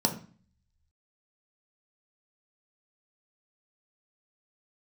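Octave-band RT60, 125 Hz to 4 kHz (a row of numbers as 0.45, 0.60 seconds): 0.80, 0.65, 0.40, 0.40, 0.40, 0.40 seconds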